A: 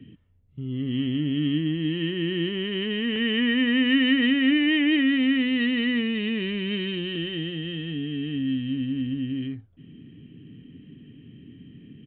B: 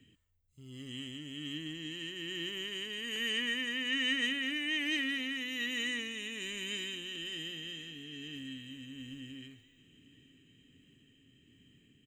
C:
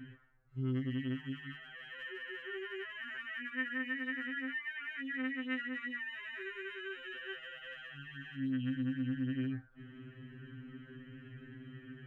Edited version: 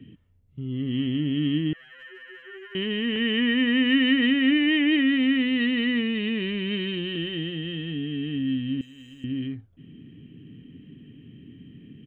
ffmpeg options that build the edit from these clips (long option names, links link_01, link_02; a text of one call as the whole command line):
ffmpeg -i take0.wav -i take1.wav -i take2.wav -filter_complex "[0:a]asplit=3[link_01][link_02][link_03];[link_01]atrim=end=1.732[link_04];[2:a]atrim=start=1.728:end=2.752[link_05];[link_02]atrim=start=2.748:end=8.812[link_06];[1:a]atrim=start=8.808:end=9.242[link_07];[link_03]atrim=start=9.238[link_08];[link_04][link_05]acrossfade=duration=0.004:curve1=hsin:curve2=hsin[link_09];[link_09][link_06]acrossfade=duration=0.004:curve1=hsin:curve2=hsin[link_10];[link_10][link_07]acrossfade=duration=0.004:curve1=hsin:curve2=hsin[link_11];[link_11][link_08]acrossfade=duration=0.004:curve1=hsin:curve2=hsin" out.wav